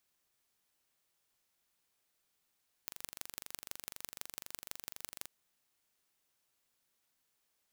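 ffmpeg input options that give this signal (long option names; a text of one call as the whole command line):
ffmpeg -f lavfi -i "aevalsrc='0.251*eq(mod(n,1838),0)*(0.5+0.5*eq(mod(n,7352),0))':duration=2.38:sample_rate=44100" out.wav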